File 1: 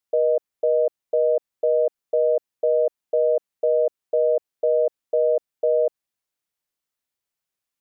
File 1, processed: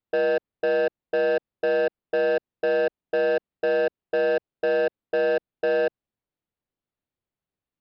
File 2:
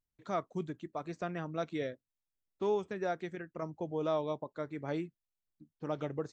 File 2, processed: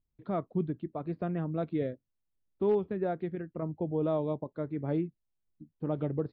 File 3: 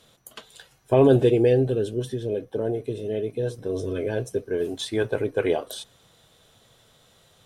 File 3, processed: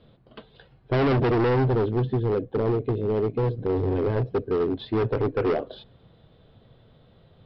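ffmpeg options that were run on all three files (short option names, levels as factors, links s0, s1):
-af "lowpass=f=4100:w=0.5412,lowpass=f=4100:w=1.3066,tiltshelf=f=660:g=8.5,aresample=11025,asoftclip=type=hard:threshold=0.0944,aresample=44100,volume=1.12"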